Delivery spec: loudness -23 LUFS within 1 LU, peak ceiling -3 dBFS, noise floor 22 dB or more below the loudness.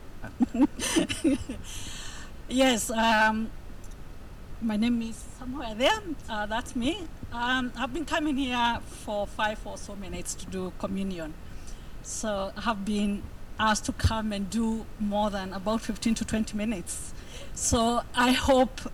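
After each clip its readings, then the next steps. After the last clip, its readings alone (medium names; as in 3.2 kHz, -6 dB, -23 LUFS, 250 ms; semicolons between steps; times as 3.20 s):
clipped samples 0.4%; clipping level -15.5 dBFS; noise floor -44 dBFS; noise floor target -51 dBFS; loudness -28.5 LUFS; peak level -15.5 dBFS; loudness target -23.0 LUFS
-> clip repair -15.5 dBFS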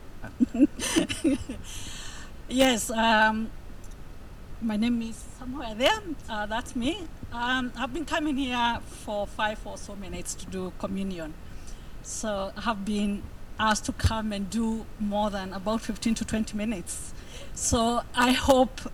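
clipped samples 0.0%; noise floor -44 dBFS; noise floor target -50 dBFS
-> noise print and reduce 6 dB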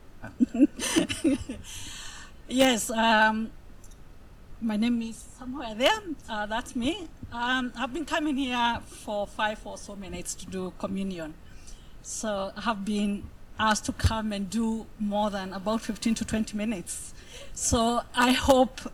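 noise floor -49 dBFS; noise floor target -50 dBFS
-> noise print and reduce 6 dB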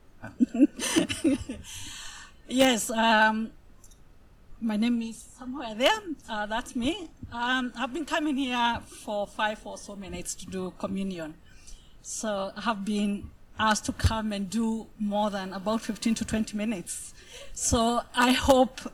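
noise floor -53 dBFS; loudness -27.5 LUFS; peak level -6.5 dBFS; loudness target -23.0 LUFS
-> trim +4.5 dB; peak limiter -3 dBFS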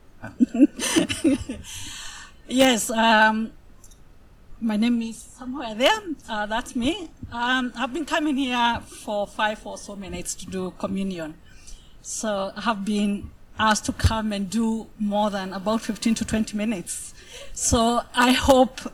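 loudness -23.5 LUFS; peak level -3.0 dBFS; noise floor -48 dBFS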